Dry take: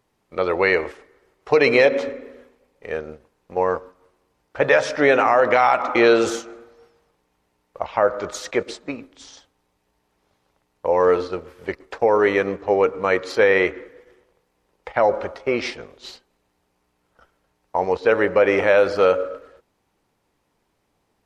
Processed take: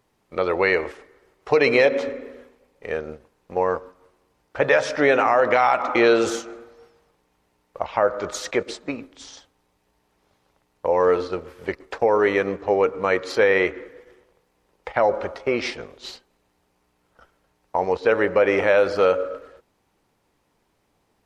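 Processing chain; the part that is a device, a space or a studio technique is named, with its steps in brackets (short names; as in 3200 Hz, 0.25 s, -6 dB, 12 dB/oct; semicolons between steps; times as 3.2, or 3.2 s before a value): parallel compression (in parallel at -3 dB: compressor, threshold -26 dBFS, peak gain reduction 14.5 dB); on the sum: gain -3 dB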